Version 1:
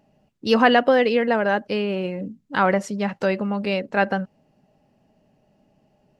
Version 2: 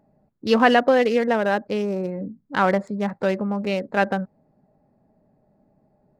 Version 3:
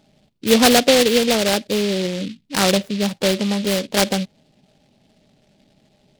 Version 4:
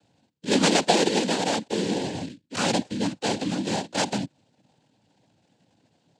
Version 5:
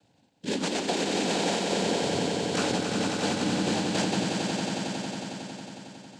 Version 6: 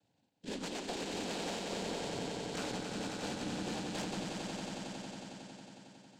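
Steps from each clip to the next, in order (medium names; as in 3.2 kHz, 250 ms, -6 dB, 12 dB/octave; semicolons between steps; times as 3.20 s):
local Wiener filter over 15 samples
dynamic bell 1 kHz, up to -7 dB, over -34 dBFS, Q 1.7; delay time shaken by noise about 3.2 kHz, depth 0.15 ms; trim +4.5 dB
noise-vocoded speech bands 8; trim -6.5 dB
compression, threshold -27 dBFS, peak gain reduction 12 dB; on a send: echo with a slow build-up 91 ms, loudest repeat 5, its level -6.5 dB
valve stage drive 22 dB, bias 0.6; trim -8.5 dB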